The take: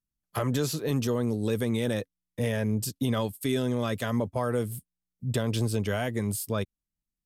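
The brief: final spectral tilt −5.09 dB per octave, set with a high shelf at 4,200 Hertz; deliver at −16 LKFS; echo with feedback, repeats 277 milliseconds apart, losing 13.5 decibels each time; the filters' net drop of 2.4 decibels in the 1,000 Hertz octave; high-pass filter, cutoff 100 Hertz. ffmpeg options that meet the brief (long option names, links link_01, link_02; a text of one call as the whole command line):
ffmpeg -i in.wav -af "highpass=100,equalizer=frequency=1000:width_type=o:gain=-3.5,highshelf=frequency=4200:gain=4,aecho=1:1:277|554:0.211|0.0444,volume=13.5dB" out.wav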